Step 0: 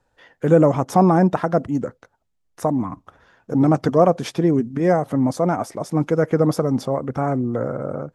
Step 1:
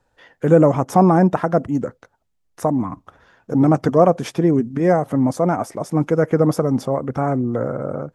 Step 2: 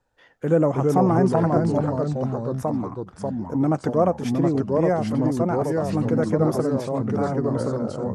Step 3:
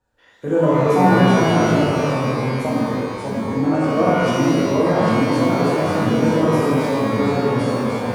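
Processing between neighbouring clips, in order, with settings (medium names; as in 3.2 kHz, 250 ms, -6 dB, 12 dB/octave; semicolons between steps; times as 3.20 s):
dynamic bell 4.1 kHz, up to -5 dB, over -48 dBFS, Q 1.7; trim +1.5 dB
ever faster or slower copies 266 ms, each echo -2 st, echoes 3; trim -6.5 dB
pitch-shifted reverb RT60 1.5 s, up +12 st, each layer -8 dB, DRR -7 dB; trim -4 dB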